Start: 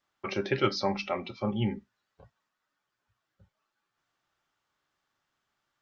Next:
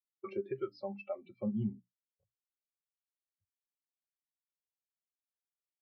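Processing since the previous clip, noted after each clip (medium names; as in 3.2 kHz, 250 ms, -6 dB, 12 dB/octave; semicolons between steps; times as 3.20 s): hum notches 60/120/180/240/300 Hz; compression 20:1, threshold -34 dBFS, peak gain reduction 15 dB; spectral contrast expander 2.5:1; trim -3 dB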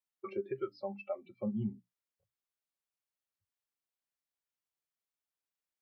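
peaking EQ 1.1 kHz +3.5 dB 2.9 oct; trim -1.5 dB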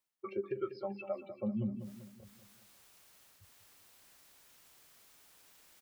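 reverse; upward compressor, threshold -39 dBFS; reverse; feedback delay 194 ms, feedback 47%, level -11.5 dB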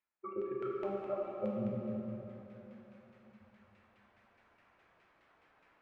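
LFO low-pass saw down 4.8 Hz 530–2400 Hz; plate-style reverb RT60 3.5 s, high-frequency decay 0.85×, DRR -3.5 dB; trim -5.5 dB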